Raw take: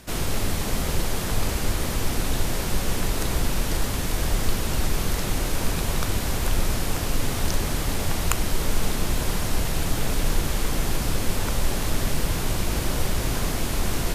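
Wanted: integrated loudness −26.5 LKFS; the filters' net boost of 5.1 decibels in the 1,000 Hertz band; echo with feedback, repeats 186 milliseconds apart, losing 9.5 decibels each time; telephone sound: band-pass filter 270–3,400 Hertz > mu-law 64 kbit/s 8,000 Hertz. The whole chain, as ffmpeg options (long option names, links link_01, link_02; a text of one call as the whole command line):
ffmpeg -i in.wav -af "highpass=270,lowpass=3400,equalizer=frequency=1000:width_type=o:gain=6.5,aecho=1:1:186|372|558|744:0.335|0.111|0.0365|0.012,volume=3.5dB" -ar 8000 -c:a pcm_mulaw out.wav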